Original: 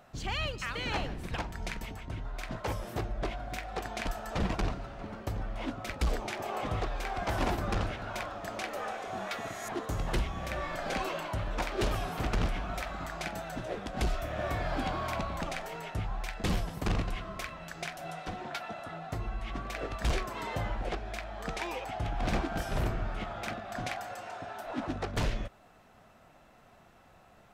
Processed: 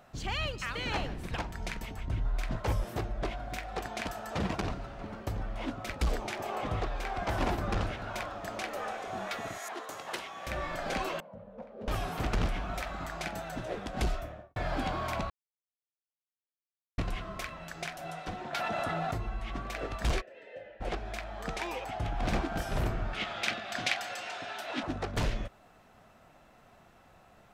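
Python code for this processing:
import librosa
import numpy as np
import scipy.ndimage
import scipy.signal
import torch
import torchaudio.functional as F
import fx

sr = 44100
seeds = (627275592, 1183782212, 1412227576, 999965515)

y = fx.low_shelf(x, sr, hz=120.0, db=9.5, at=(1.98, 2.84))
y = fx.highpass(y, sr, hz=75.0, slope=12, at=(3.86, 4.69))
y = fx.high_shelf(y, sr, hz=5600.0, db=-4.0, at=(6.55, 7.78))
y = fx.bessel_highpass(y, sr, hz=640.0, order=2, at=(9.58, 10.47))
y = fx.double_bandpass(y, sr, hz=330.0, octaves=1.2, at=(11.2, 11.88))
y = fx.studio_fade_out(y, sr, start_s=14.04, length_s=0.52)
y = fx.env_flatten(y, sr, amount_pct=100, at=(18.53, 19.18))
y = fx.vowel_filter(y, sr, vowel='e', at=(20.2, 20.8), fade=0.02)
y = fx.weighting(y, sr, curve='D', at=(23.13, 24.83))
y = fx.edit(y, sr, fx.silence(start_s=15.3, length_s=1.68), tone=tone)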